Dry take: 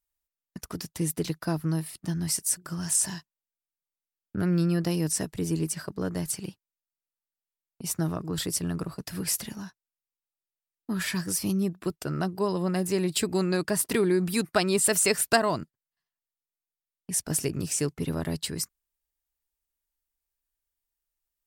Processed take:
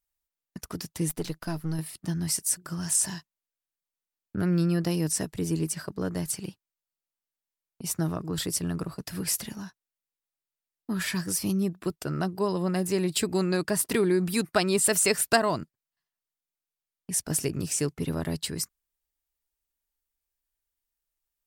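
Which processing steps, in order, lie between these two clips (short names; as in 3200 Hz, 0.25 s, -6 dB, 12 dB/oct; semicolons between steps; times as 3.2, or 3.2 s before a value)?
1.09–1.79 half-wave gain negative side -7 dB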